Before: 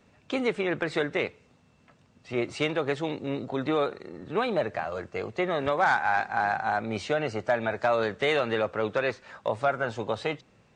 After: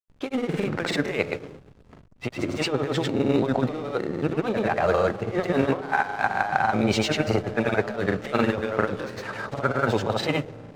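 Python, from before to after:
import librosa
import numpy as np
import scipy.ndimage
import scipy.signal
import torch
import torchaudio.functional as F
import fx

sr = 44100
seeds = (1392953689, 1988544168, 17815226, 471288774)

y = fx.over_compress(x, sr, threshold_db=-31.0, ratio=-0.5)
y = fx.rev_freeverb(y, sr, rt60_s=2.3, hf_ratio=0.3, predelay_ms=0, drr_db=12.0)
y = fx.backlash(y, sr, play_db=-43.0)
y = fx.granulator(y, sr, seeds[0], grain_ms=100.0, per_s=20.0, spray_ms=100.0, spread_st=0)
y = y * librosa.db_to_amplitude(9.0)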